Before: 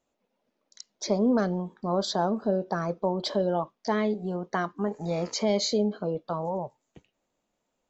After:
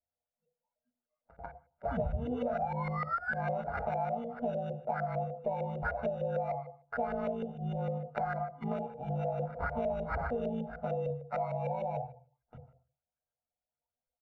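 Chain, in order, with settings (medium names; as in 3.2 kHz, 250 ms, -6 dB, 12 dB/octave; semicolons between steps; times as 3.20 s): granular stretch 1.8×, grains 37 ms; painted sound fall, 1.91–3.41 s, 1.6–3.5 kHz -28 dBFS; sample-rate reducer 3.2 kHz, jitter 0%; spectral noise reduction 21 dB; on a send at -3 dB: reverberation RT60 0.40 s, pre-delay 3 ms; on the sum: LFO low-pass saw up 6.6 Hz 500–1800 Hz; comb 1.4 ms, depth 75%; compression 6:1, threshold -26 dBFS, peak gain reduction 16 dB; trim -5 dB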